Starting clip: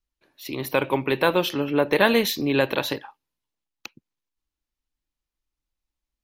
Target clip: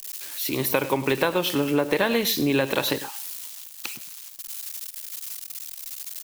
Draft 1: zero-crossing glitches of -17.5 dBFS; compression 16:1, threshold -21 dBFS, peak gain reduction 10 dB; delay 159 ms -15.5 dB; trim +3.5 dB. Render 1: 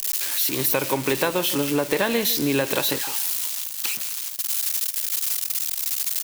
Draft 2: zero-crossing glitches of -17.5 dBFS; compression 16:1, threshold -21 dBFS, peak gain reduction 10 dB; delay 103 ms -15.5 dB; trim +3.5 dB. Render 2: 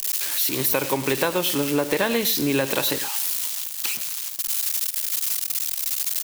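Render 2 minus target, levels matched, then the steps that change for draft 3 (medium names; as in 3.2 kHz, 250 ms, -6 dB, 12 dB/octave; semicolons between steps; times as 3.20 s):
zero-crossing glitches: distortion +11 dB
change: zero-crossing glitches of -28.5 dBFS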